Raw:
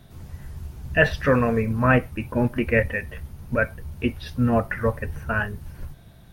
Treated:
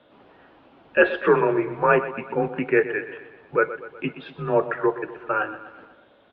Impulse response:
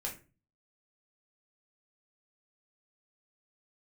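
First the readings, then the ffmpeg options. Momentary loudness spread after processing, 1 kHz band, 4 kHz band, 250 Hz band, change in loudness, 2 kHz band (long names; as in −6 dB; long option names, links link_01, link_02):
13 LU, +3.0 dB, can't be measured, −3.5 dB, 0.0 dB, −0.5 dB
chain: -af "equalizer=frequency=2100:width_type=o:width=0.86:gain=-6.5,aecho=1:1:123|246|369|492|615:0.211|0.112|0.0594|0.0315|0.0167,highpass=frequency=370:width_type=q:width=0.5412,highpass=frequency=370:width_type=q:width=1.307,lowpass=frequency=3300:width_type=q:width=0.5176,lowpass=frequency=3300:width_type=q:width=0.7071,lowpass=frequency=3300:width_type=q:width=1.932,afreqshift=-95,volume=4dB"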